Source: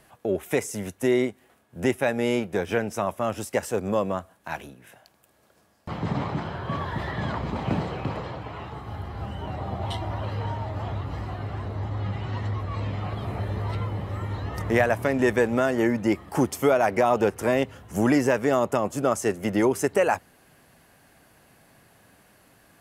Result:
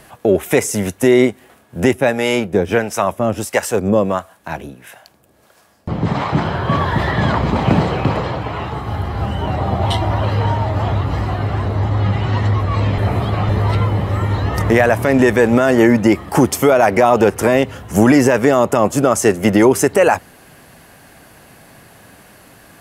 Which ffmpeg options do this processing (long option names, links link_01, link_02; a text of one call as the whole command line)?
ffmpeg -i in.wav -filter_complex "[0:a]asettb=1/sr,asplit=3[link_01][link_02][link_03];[link_01]atrim=end=1.934[link_04];[link_02]atrim=start=1.93:end=6.33,asetpts=PTS-STARTPTS,afade=type=in:duration=0.004:curve=qsin,afade=type=out:start_time=4.396:duration=0.004:curve=qsin,acrossover=split=590[link_05][link_06];[link_05]aeval=exprs='val(0)*(1-0.7/2+0.7/2*cos(2*PI*1.5*n/s))':channel_layout=same[link_07];[link_06]aeval=exprs='val(0)*(1-0.7/2-0.7/2*cos(2*PI*1.5*n/s))':channel_layout=same[link_08];[link_07][link_08]amix=inputs=2:normalize=0[link_09];[link_03]atrim=start=6.326[link_10];[link_04][link_09]acrossfade=duration=0.004:curve1=hsin:curve2=qsin[link_11];[link_11][link_10]acrossfade=duration=0.004:curve1=qsin:curve2=hsin,asplit=3[link_12][link_13][link_14];[link_12]atrim=end=12.982[link_15];[link_13]atrim=start=12.978:end=13.492,asetpts=PTS-STARTPTS,areverse[link_16];[link_14]atrim=start=13.488[link_17];[link_15][link_16]acrossfade=duration=0.004:curve1=hsin:curve2=hsin[link_18];[link_18][link_17]acrossfade=duration=0.004:curve1=hsin:curve2=hsin,alimiter=level_in=14dB:limit=-1dB:release=50:level=0:latency=1,volume=-1dB" out.wav